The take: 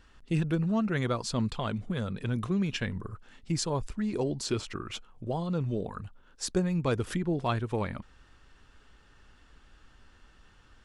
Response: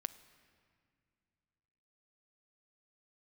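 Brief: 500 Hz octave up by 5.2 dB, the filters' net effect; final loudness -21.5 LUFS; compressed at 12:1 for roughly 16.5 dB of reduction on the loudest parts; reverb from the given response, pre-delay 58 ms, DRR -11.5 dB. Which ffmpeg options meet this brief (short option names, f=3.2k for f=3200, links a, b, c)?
-filter_complex "[0:a]equalizer=f=500:t=o:g=6.5,acompressor=threshold=-37dB:ratio=12,asplit=2[a][b];[1:a]atrim=start_sample=2205,adelay=58[c];[b][c]afir=irnorm=-1:irlink=0,volume=13.5dB[d];[a][d]amix=inputs=2:normalize=0,volume=9dB"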